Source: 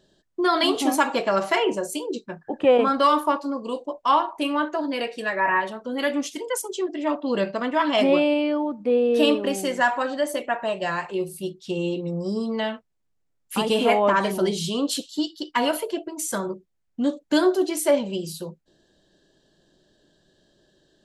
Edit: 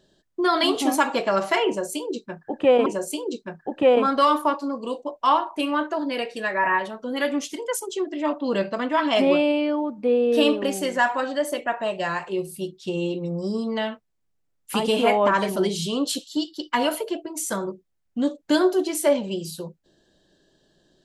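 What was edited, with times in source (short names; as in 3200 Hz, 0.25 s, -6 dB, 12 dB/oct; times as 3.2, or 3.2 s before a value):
1.68–2.86 loop, 2 plays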